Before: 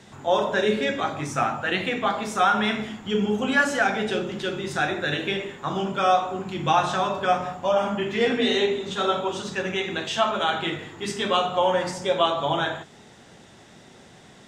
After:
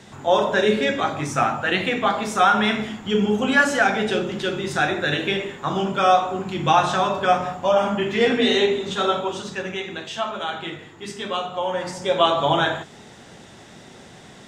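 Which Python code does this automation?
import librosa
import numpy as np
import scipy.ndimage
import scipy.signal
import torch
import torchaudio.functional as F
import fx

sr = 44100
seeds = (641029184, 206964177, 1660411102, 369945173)

y = fx.gain(x, sr, db=fx.line((8.9, 3.5), (10.06, -4.0), (11.66, -4.0), (12.33, 5.0)))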